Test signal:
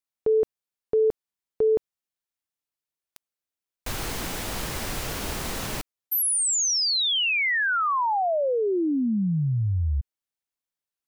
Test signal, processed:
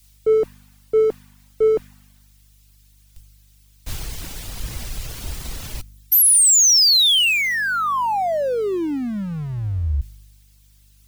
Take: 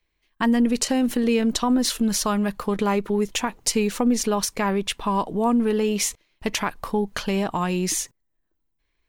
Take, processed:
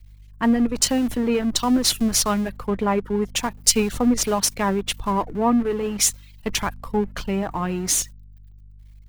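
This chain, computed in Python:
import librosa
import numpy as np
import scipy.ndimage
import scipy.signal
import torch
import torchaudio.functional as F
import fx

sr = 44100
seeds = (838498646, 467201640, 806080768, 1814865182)

p1 = x + 0.5 * 10.0 ** (-36.0 / 20.0) * np.sign(x)
p2 = fx.dereverb_blind(p1, sr, rt60_s=0.79)
p3 = fx.schmitt(p2, sr, flips_db=-25.0)
p4 = p2 + (p3 * librosa.db_to_amplitude(-8.0))
p5 = fx.add_hum(p4, sr, base_hz=50, snr_db=16)
p6 = fx.band_widen(p5, sr, depth_pct=100)
y = p6 * librosa.db_to_amplitude(-1.0)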